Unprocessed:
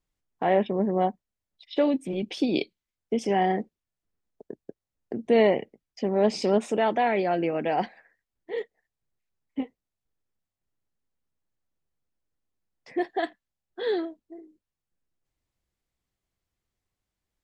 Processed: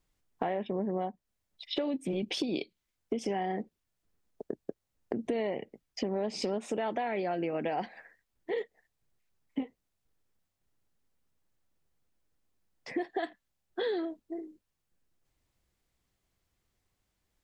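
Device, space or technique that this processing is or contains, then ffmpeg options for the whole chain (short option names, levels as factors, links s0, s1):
serial compression, peaks first: -af "acompressor=threshold=0.0251:ratio=4,acompressor=threshold=0.0141:ratio=2,volume=1.88"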